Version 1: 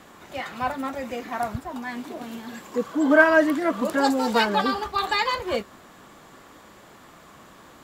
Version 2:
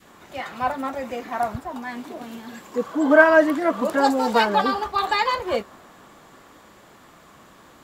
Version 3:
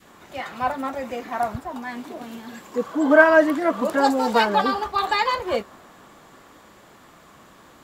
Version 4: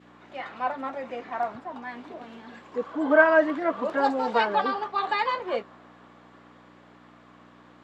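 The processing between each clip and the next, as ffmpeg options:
-af "adynamicequalizer=threshold=0.0224:dfrequency=760:dqfactor=0.71:tfrequency=760:tqfactor=0.71:attack=5:release=100:ratio=0.375:range=2.5:mode=boostabove:tftype=bell,volume=0.891"
-af anull
-af "aeval=exprs='val(0)+0.0126*(sin(2*PI*60*n/s)+sin(2*PI*2*60*n/s)/2+sin(2*PI*3*60*n/s)/3+sin(2*PI*4*60*n/s)/4+sin(2*PI*5*60*n/s)/5)':c=same,highpass=280,lowpass=3400,volume=0.631"

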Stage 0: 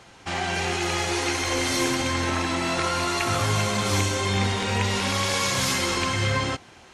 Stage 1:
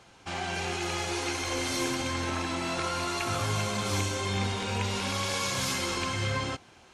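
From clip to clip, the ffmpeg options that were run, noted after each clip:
-af "bandreject=f=1900:w=12,volume=0.501"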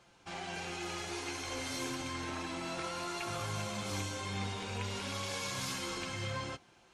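-af "flanger=delay=5.7:depth=1.4:regen=-47:speed=0.3:shape=triangular,volume=0.631"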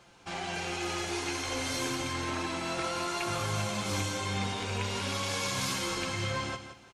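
-af "aecho=1:1:170|340|510:0.299|0.0776|0.0202,volume=1.88"

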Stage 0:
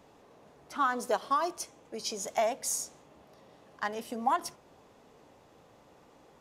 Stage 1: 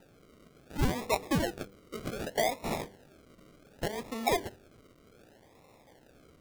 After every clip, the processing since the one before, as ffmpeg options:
-af "acrusher=samples=40:mix=1:aa=0.000001:lfo=1:lforange=24:lforate=0.66,bandreject=f=98.01:t=h:w=4,bandreject=f=196.02:t=h:w=4,bandreject=f=294.03:t=h:w=4,bandreject=f=392.04:t=h:w=4,bandreject=f=490.05:t=h:w=4"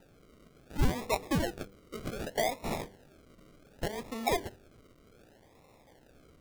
-af "lowshelf=f=64:g=7,volume=0.841"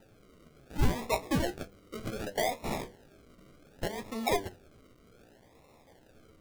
-af "flanger=delay=9.1:depth=8.3:regen=50:speed=0.48:shape=sinusoidal,volume=1.68"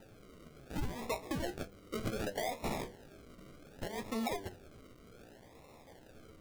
-af "acompressor=threshold=0.0282:ratio=6,alimiter=level_in=2:limit=0.0631:level=0:latency=1:release=299,volume=0.501,volume=1.33"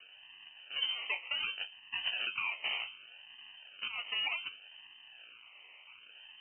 -af "lowpass=f=2600:t=q:w=0.5098,lowpass=f=2600:t=q:w=0.6013,lowpass=f=2600:t=q:w=0.9,lowpass=f=2600:t=q:w=2.563,afreqshift=-3100,volume=1.12"

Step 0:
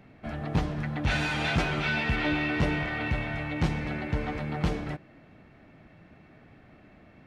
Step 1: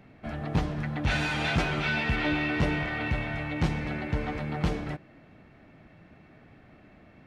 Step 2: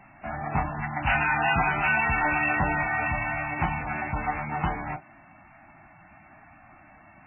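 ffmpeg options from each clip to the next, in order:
-af anull
-af "lowshelf=f=630:t=q:w=3:g=-7.5,volume=1.88" -ar 12000 -c:a libmp3lame -b:a 8k

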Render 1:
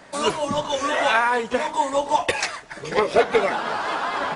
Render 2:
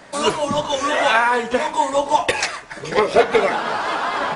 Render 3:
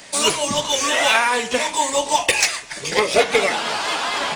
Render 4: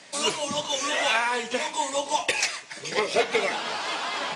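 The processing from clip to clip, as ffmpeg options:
-af "bandreject=f=91.39:t=h:w=4,bandreject=f=182.78:t=h:w=4,bandreject=f=274.17:t=h:w=4,bandreject=f=365.56:t=h:w=4,bandreject=f=456.95:t=h:w=4,bandreject=f=548.34:t=h:w=4,bandreject=f=639.73:t=h:w=4,bandreject=f=731.12:t=h:w=4,bandreject=f=822.51:t=h:w=4,bandreject=f=913.9:t=h:w=4,bandreject=f=1005.29:t=h:w=4,bandreject=f=1096.68:t=h:w=4,bandreject=f=1188.07:t=h:w=4,bandreject=f=1279.46:t=h:w=4,bandreject=f=1370.85:t=h:w=4,bandreject=f=1462.24:t=h:w=4,bandreject=f=1553.63:t=h:w=4,bandreject=f=1645.02:t=h:w=4,bandreject=f=1736.41:t=h:w=4,bandreject=f=1827.8:t=h:w=4,bandreject=f=1919.19:t=h:w=4,bandreject=f=2010.58:t=h:w=4,bandreject=f=2101.97:t=h:w=4,bandreject=f=2193.36:t=h:w=4,bandreject=f=2284.75:t=h:w=4,bandreject=f=2376.14:t=h:w=4,bandreject=f=2467.53:t=h:w=4,bandreject=f=2558.92:t=h:w=4,bandreject=f=2650.31:t=h:w=4,bandreject=f=2741.7:t=h:w=4,volume=1.5"
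-af "aexciter=amount=1.7:drive=9.8:freq=2100,volume=0.75"
-af "highpass=120,lowpass=7800,volume=0.447"

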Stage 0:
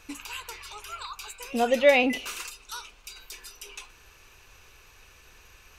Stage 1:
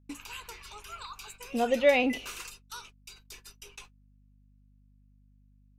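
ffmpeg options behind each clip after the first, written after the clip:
-af "agate=range=0.00708:threshold=0.00631:ratio=16:detection=peak,lowshelf=f=470:g=4,aeval=exprs='val(0)+0.00178*(sin(2*PI*50*n/s)+sin(2*PI*2*50*n/s)/2+sin(2*PI*3*50*n/s)/3+sin(2*PI*4*50*n/s)/4+sin(2*PI*5*50*n/s)/5)':c=same,volume=0.562"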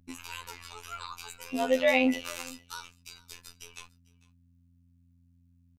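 -af "aecho=1:1:448:0.0708,afftfilt=real='hypot(re,im)*cos(PI*b)':imag='0':win_size=2048:overlap=0.75,volume=1.68"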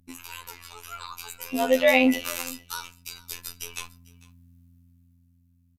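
-filter_complex "[0:a]equalizer=f=13000:t=o:w=0.55:g=11,dynaudnorm=f=210:g=13:m=3.98,asplit=2[s0][s1];[s1]adelay=61,lowpass=f=1600:p=1,volume=0.0891,asplit=2[s2][s3];[s3]adelay=61,lowpass=f=1600:p=1,volume=0.54,asplit=2[s4][s5];[s5]adelay=61,lowpass=f=1600:p=1,volume=0.54,asplit=2[s6][s7];[s7]adelay=61,lowpass=f=1600:p=1,volume=0.54[s8];[s0][s2][s4][s6][s8]amix=inputs=5:normalize=0"

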